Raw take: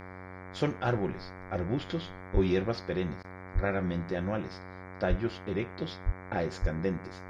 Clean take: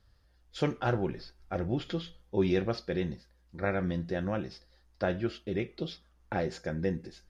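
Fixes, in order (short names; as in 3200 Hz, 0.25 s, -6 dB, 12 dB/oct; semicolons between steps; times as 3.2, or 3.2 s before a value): de-hum 92.6 Hz, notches 25; de-plosive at 2.33/3.54/5.09/6.05/6.61; interpolate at 3.23, 11 ms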